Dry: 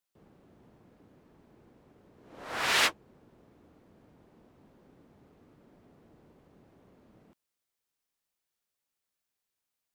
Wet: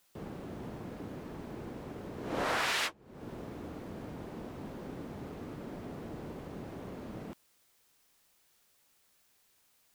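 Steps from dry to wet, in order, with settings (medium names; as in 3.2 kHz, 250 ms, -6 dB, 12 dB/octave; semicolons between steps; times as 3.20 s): compression 20:1, threshold -46 dBFS, peak gain reduction 26 dB; trim +17 dB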